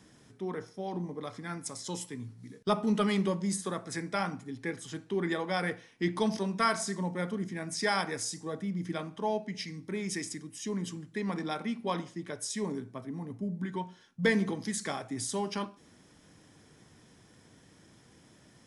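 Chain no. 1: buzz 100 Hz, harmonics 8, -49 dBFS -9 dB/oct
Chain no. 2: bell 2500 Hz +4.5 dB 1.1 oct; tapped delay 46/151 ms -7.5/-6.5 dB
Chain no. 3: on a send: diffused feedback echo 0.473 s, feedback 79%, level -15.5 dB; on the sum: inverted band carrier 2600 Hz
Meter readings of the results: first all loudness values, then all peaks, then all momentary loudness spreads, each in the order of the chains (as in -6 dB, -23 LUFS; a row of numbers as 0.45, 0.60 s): -34.0, -31.5, -31.5 LUFS; -13.5, -12.0, -13.5 dBFS; 21, 11, 17 LU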